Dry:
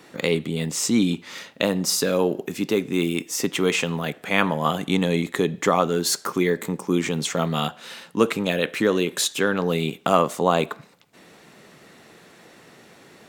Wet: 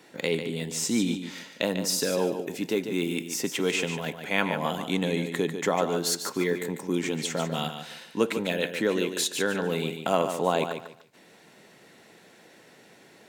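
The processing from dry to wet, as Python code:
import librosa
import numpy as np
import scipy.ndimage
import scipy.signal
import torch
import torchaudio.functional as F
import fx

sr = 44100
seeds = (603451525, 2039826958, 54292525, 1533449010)

p1 = fx.low_shelf(x, sr, hz=120.0, db=-8.0)
p2 = fx.notch(p1, sr, hz=1200.0, q=5.9)
p3 = p2 + fx.echo_feedback(p2, sr, ms=146, feedback_pct=24, wet_db=-8.5, dry=0)
y = F.gain(torch.from_numpy(p3), -4.5).numpy()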